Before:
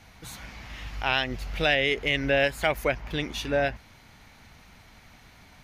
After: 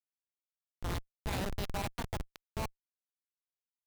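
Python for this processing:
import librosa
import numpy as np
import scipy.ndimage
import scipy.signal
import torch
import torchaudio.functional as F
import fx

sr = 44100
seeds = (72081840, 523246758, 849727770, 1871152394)

y = fx.speed_glide(x, sr, from_pct=120, to_pct=172)
y = fx.room_early_taps(y, sr, ms=(51, 73), db=(-5.0, -14.5))
y = fx.schmitt(y, sr, flips_db=-18.0)
y = F.gain(torch.from_numpy(y), -6.0).numpy()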